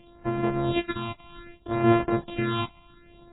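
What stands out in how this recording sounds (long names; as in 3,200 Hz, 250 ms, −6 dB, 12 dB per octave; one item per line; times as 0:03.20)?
a buzz of ramps at a fixed pitch in blocks of 128 samples
phaser sweep stages 6, 0.64 Hz, lowest notch 430–4,200 Hz
AAC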